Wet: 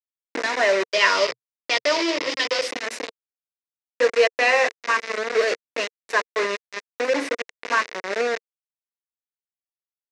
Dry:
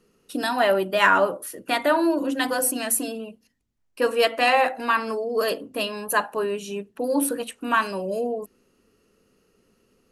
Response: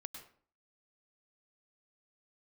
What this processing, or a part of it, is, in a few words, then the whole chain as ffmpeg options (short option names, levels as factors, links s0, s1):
hand-held game console: -filter_complex "[0:a]acrusher=bits=3:mix=0:aa=0.000001,highpass=440,equalizer=f=460:t=q:w=4:g=5,equalizer=f=810:t=q:w=4:g=-8,equalizer=f=1300:t=q:w=4:g=-5,equalizer=f=2000:t=q:w=4:g=6,equalizer=f=3200:t=q:w=4:g=-8,equalizer=f=4500:t=q:w=4:g=-4,lowpass=f=5600:w=0.5412,lowpass=f=5600:w=1.3066,asettb=1/sr,asplit=3[s0][s1][s2];[s0]atrim=end=0.844[s3];[s1]atrim=start=0.84:end=2.68,asetpts=PTS-STARTPTS,afade=t=in:d=0.004:c=qsin,afade=t=out:st=1.836:d=0.004:c=qsin,equalizer=f=125:t=o:w=0.33:g=5,equalizer=f=250:t=o:w=0.33:g=-10,equalizer=f=800:t=o:w=0.33:g=-6,equalizer=f=1600:t=o:w=0.33:g=-7,equalizer=f=3150:t=o:w=0.33:g=9,equalizer=f=5000:t=o:w=0.33:g=11,equalizer=f=10000:t=o:w=0.33:g=-4[s4];[s2]atrim=start=2.676[s5];[s3][s4]acrossfade=d=0.004:c1=hsin:c2=qsin[s6];[s6][s5]acrossfade=d=0.004:c1=qsin:c2=hsin,volume=1.26"